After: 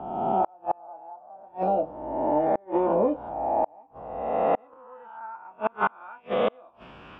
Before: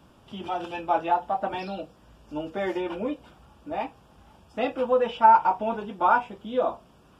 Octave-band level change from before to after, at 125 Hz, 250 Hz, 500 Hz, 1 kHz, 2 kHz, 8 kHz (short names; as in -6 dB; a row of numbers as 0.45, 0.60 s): +2.5 dB, +1.5 dB, +1.5 dB, -4.0 dB, -4.5 dB, n/a